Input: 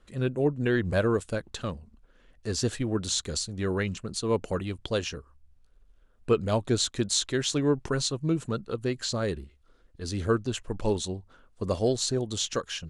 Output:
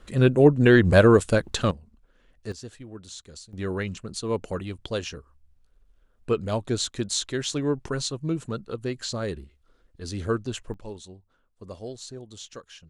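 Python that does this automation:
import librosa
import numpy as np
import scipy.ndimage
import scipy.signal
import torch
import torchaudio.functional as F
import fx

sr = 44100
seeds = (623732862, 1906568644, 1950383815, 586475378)

y = fx.gain(x, sr, db=fx.steps((0.0, 9.5), (1.71, -2.0), (2.52, -13.0), (3.53, -1.0), (10.74, -12.0)))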